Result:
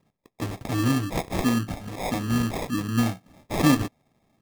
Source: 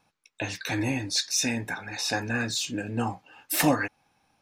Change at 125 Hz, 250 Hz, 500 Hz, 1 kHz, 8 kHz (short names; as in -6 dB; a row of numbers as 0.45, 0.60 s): +7.0, +6.0, +1.5, +2.0, -8.0 dB